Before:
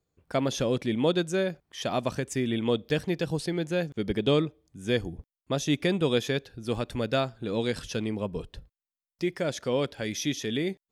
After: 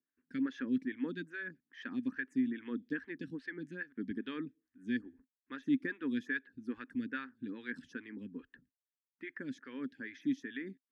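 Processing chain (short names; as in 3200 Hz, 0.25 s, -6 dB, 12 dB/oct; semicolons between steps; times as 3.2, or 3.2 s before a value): harmonic-percussive split percussive +5 dB; double band-pass 660 Hz, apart 2.7 oct; photocell phaser 2.4 Hz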